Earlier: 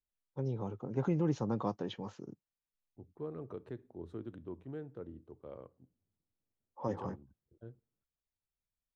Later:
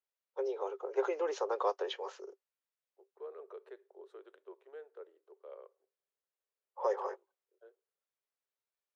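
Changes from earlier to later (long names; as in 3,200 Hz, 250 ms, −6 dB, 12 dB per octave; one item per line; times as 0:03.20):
first voice +7.5 dB
master: add Chebyshev high-pass with heavy ripple 380 Hz, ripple 3 dB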